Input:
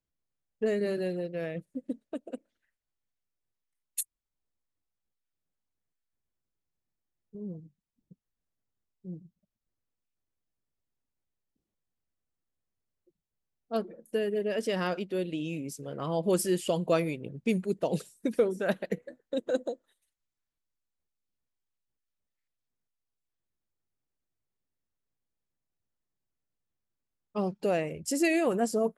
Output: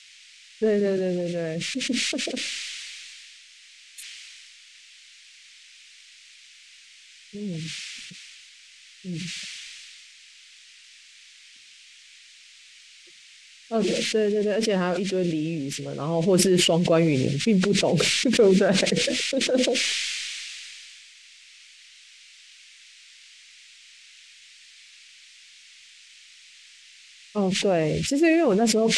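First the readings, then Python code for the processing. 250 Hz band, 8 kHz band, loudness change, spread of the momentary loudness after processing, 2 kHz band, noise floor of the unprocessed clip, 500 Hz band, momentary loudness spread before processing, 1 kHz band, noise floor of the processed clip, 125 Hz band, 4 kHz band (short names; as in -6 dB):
+9.0 dB, +12.0 dB, +8.0 dB, 20 LU, +10.5 dB, under -85 dBFS, +7.0 dB, 14 LU, +5.0 dB, -51 dBFS, +10.5 dB, +19.0 dB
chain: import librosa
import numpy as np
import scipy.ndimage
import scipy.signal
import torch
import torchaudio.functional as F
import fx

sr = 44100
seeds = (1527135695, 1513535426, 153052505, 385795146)

y = fx.peak_eq(x, sr, hz=990.0, db=-2.0, octaves=1.7)
y = fx.dmg_noise_band(y, sr, seeds[0], low_hz=2100.0, high_hz=9200.0, level_db=-48.0)
y = fx.spacing_loss(y, sr, db_at_10k=20)
y = fx.sustainer(y, sr, db_per_s=20.0)
y = F.gain(torch.from_numpy(y), 7.0).numpy()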